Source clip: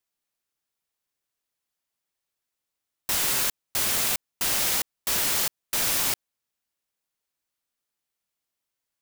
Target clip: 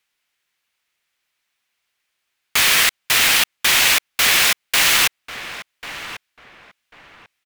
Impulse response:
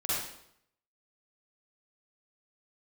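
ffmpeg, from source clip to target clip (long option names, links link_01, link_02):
-filter_complex "[0:a]equalizer=frequency=1900:width=0.62:gain=14,asetrate=53361,aresample=44100,asplit=2[link_01][link_02];[link_02]adelay=1093,lowpass=frequency=1600:poles=1,volume=-10.5dB,asplit=2[link_03][link_04];[link_04]adelay=1093,lowpass=frequency=1600:poles=1,volume=0.29,asplit=2[link_05][link_06];[link_06]adelay=1093,lowpass=frequency=1600:poles=1,volume=0.29[link_07];[link_01][link_03][link_05][link_07]amix=inputs=4:normalize=0,volume=5dB"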